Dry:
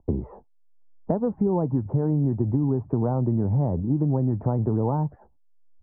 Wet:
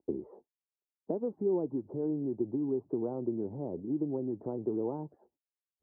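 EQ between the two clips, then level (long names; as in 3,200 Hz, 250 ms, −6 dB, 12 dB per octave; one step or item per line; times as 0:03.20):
resonant band-pass 360 Hz, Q 2.7
high-frequency loss of the air 360 metres
spectral tilt +2.5 dB per octave
+2.0 dB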